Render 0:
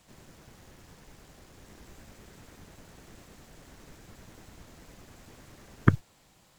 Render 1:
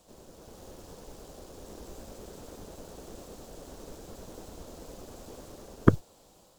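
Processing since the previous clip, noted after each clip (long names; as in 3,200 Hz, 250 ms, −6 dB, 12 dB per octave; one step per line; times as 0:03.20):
octave-band graphic EQ 125/500/2,000 Hz −7/+7/−12 dB
automatic gain control gain up to 5 dB
level +1 dB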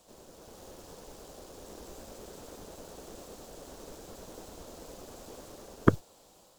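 low-shelf EQ 290 Hz −6 dB
level +1 dB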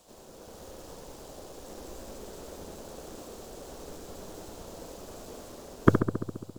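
feedback echo with a low-pass in the loop 68 ms, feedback 76%, low-pass 2,000 Hz, level −7 dB
level +2 dB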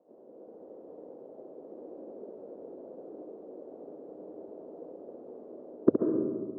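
flat-topped band-pass 390 Hz, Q 1.1
comb and all-pass reverb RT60 1.6 s, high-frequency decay 0.3×, pre-delay 95 ms, DRR 4.5 dB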